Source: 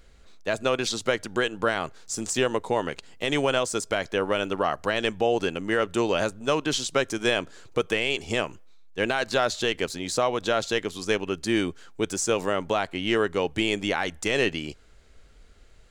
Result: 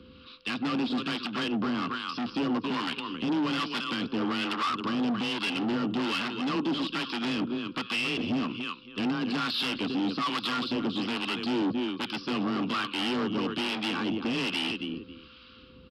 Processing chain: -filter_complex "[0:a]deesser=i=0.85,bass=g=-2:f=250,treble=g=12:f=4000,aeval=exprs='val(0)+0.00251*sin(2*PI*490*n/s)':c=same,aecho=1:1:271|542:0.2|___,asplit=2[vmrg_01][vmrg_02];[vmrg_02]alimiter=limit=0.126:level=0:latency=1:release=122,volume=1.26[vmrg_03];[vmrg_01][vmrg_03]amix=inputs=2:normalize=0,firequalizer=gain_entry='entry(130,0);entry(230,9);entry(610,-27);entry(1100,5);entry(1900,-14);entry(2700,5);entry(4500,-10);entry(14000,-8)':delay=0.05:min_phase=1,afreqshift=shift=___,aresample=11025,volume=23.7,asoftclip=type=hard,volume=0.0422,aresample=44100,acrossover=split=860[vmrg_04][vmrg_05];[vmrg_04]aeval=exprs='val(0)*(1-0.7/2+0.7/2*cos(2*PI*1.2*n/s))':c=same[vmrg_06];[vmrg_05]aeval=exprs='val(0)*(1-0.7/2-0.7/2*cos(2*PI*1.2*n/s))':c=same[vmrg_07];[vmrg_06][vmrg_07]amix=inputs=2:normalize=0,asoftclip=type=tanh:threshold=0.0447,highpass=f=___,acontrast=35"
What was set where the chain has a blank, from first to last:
0.0419, 22, 140